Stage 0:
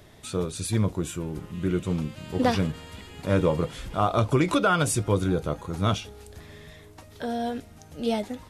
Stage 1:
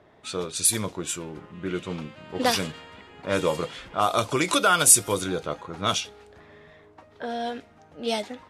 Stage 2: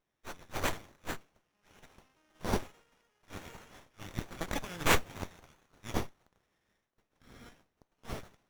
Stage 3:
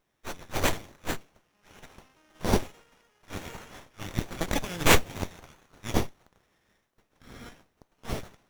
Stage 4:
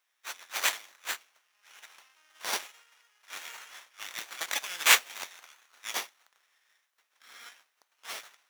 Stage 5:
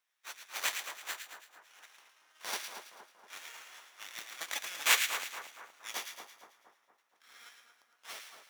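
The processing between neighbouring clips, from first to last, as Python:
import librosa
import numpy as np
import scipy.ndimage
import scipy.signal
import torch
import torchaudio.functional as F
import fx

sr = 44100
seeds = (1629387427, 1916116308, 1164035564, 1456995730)

y1 = fx.riaa(x, sr, side='recording')
y1 = fx.env_lowpass(y1, sr, base_hz=1100.0, full_db=-20.0)
y1 = y1 * librosa.db_to_amplitude(2.0)
y2 = fx.ladder_bandpass(y1, sr, hz=5800.0, resonance_pct=80)
y2 = fx.running_max(y2, sr, window=9)
y2 = y2 * librosa.db_to_amplitude(4.0)
y3 = fx.dynamic_eq(y2, sr, hz=1300.0, q=1.1, threshold_db=-51.0, ratio=4.0, max_db=-4)
y3 = y3 * librosa.db_to_amplitude(8.0)
y4 = scipy.signal.sosfilt(scipy.signal.butter(2, 1400.0, 'highpass', fs=sr, output='sos'), y3)
y4 = y4 * librosa.db_to_amplitude(3.0)
y5 = fx.echo_split(y4, sr, split_hz=1500.0, low_ms=234, high_ms=110, feedback_pct=52, wet_db=-6.5)
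y5 = y5 * librosa.db_to_amplitude(-6.0)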